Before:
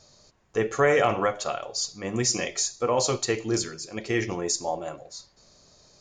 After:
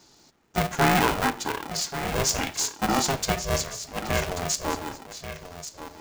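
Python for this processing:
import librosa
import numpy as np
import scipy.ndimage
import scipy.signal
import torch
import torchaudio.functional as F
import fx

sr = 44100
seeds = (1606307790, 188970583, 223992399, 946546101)

y = x + 10.0 ** (-11.5 / 20.0) * np.pad(x, (int(1135 * sr / 1000.0), 0))[:len(x)]
y = y * np.sign(np.sin(2.0 * np.pi * 270.0 * np.arange(len(y)) / sr))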